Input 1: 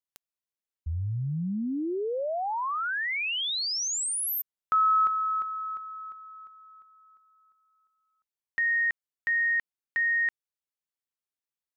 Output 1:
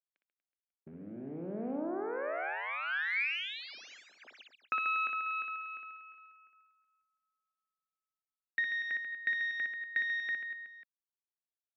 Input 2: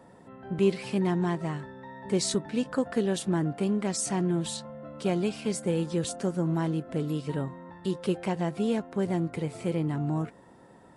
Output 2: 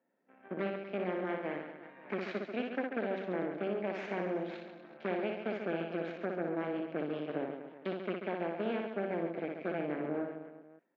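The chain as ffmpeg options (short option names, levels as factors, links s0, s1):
-af "agate=range=0.355:threshold=0.00355:ratio=16:release=143:detection=peak,equalizer=f=1200:w=0.33:g=-7.5,acompressor=threshold=0.0251:ratio=16:attack=56:release=609:knee=6:detection=rms,aeval=exprs='0.0794*(cos(1*acos(clip(val(0)/0.0794,-1,1)))-cos(1*PI/2))+0.00316*(cos(4*acos(clip(val(0)/0.0794,-1,1)))-cos(4*PI/2))+0.0126*(cos(5*acos(clip(val(0)/0.0794,-1,1)))-cos(5*PI/2))+0.0178*(cos(7*acos(clip(val(0)/0.0794,-1,1)))-cos(7*PI/2))+0.00708*(cos(8*acos(clip(val(0)/0.0794,-1,1)))-cos(8*PI/2))':c=same,aresample=16000,aeval=exprs='clip(val(0),-1,0.00668)':c=same,aresample=44100,highpass=f=230:w=0.5412,highpass=f=230:w=1.3066,equalizer=f=620:t=q:w=4:g=4,equalizer=f=1000:t=q:w=4:g=-4,equalizer=f=1600:t=q:w=4:g=8,equalizer=f=2300:t=q:w=4:g=9,lowpass=f=3000:w=0.5412,lowpass=f=3000:w=1.3066,aecho=1:1:60|138|239.4|371.2|542.6:0.631|0.398|0.251|0.158|0.1" -ar 48000 -c:a libmp3lame -b:a 64k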